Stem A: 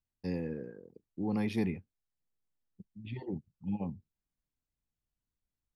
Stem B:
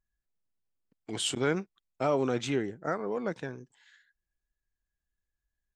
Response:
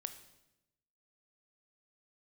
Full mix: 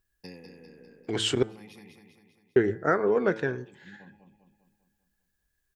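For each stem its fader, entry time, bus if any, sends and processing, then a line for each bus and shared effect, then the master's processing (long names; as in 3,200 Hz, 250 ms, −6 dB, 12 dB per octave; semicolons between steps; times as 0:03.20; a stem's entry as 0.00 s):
+2.0 dB, 0.00 s, no send, echo send −7 dB, spectral tilt +3 dB per octave; downward compressor 6 to 1, threshold −43 dBFS, peak gain reduction 11.5 dB; automatic ducking −22 dB, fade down 0.60 s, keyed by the second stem
+2.5 dB, 0.00 s, muted 0:01.43–0:02.56, send −14 dB, no echo send, graphic EQ with 15 bands 100 Hz +8 dB, 400 Hz +8 dB, 1,600 Hz +8 dB, 10,000 Hz −11 dB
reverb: on, RT60 0.90 s, pre-delay 18 ms
echo: repeating echo 199 ms, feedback 52%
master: hum removal 110.3 Hz, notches 18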